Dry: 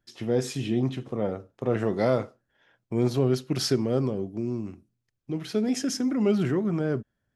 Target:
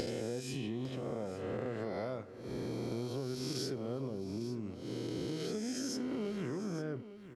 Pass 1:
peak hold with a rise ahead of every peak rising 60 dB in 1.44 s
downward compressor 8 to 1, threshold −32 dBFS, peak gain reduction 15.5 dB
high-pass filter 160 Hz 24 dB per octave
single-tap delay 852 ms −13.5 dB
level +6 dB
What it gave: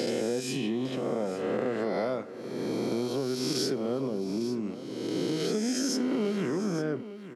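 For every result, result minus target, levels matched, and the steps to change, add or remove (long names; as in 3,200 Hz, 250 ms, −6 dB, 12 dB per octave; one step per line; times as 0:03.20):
downward compressor: peak gain reduction −9 dB; 125 Hz band −6.0 dB
change: downward compressor 8 to 1, threshold −42.5 dBFS, peak gain reduction 24.5 dB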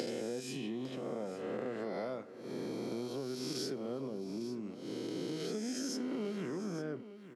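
125 Hz band −6.0 dB
remove: high-pass filter 160 Hz 24 dB per octave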